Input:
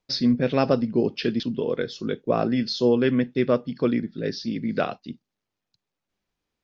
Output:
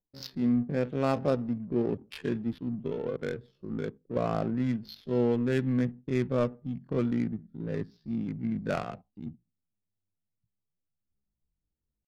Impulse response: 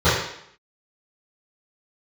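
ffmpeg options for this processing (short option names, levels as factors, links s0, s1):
-af "adynamicsmooth=sensitivity=2.5:basefreq=600,asubboost=boost=3:cutoff=180,atempo=0.55,volume=0.473"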